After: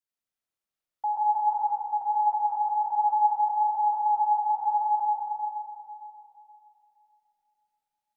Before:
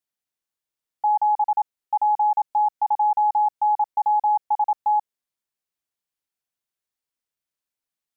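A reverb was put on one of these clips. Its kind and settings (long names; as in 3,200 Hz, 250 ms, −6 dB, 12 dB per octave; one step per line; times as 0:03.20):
comb and all-pass reverb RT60 3 s, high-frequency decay 0.45×, pre-delay 50 ms, DRR −5.5 dB
level −7.5 dB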